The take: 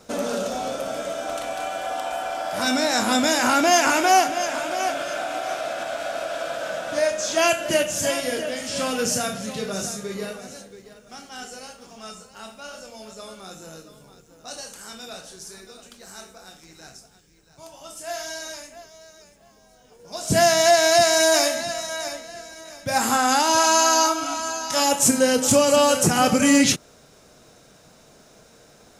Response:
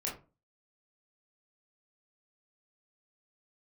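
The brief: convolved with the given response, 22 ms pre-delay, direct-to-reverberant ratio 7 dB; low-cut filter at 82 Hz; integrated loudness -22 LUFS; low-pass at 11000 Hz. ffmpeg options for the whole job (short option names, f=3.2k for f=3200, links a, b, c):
-filter_complex "[0:a]highpass=82,lowpass=11k,asplit=2[a][b];[1:a]atrim=start_sample=2205,adelay=22[c];[b][c]afir=irnorm=-1:irlink=0,volume=-9.5dB[d];[a][d]amix=inputs=2:normalize=0,volume=-2dB"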